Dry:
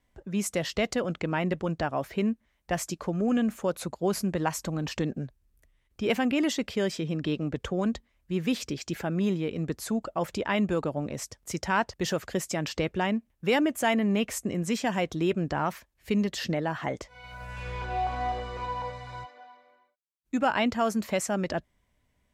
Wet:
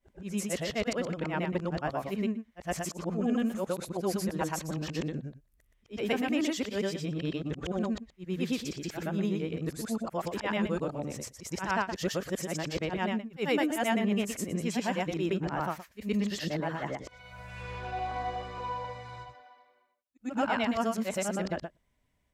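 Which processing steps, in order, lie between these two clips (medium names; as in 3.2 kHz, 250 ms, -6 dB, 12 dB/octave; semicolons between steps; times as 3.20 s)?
short-time spectra conjugated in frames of 247 ms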